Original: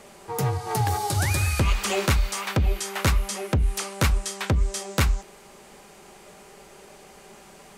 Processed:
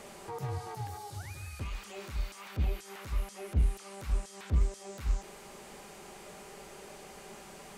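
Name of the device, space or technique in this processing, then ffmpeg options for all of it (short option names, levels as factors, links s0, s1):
de-esser from a sidechain: -filter_complex "[0:a]asplit=2[s0][s1];[s1]highpass=f=4500:p=1,apad=whole_len=342935[s2];[s0][s2]sidechaincompress=threshold=0.00316:ratio=12:attack=0.75:release=25"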